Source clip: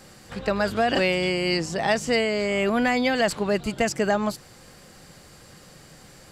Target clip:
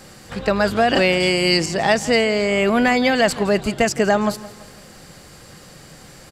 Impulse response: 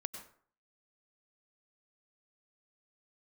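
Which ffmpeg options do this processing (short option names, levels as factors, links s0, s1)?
-filter_complex "[0:a]asettb=1/sr,asplit=3[s0][s1][s2];[s0]atrim=end=1.204[s3];[s1]atrim=start=1.2:end=1.66,asetpts=PTS-STARTPTS,afade=t=in:d=0.004:c=qsin,afade=t=out:st=0.456:d=0.004:c=qsin,highshelf=f=4900:g=9[s4];[s2]atrim=start=1.656[s5];[s3][s4]acrossfade=d=0.004:c1=hsin:c2=qsin[s6];[s6][s5]acrossfade=d=0.004:c1=qsin:c2=hsin,asplit=2[s7][s8];[s8]aecho=0:1:167|334|501|668:0.126|0.0541|0.0233|0.01[s9];[s7][s9]amix=inputs=2:normalize=0,volume=1.88"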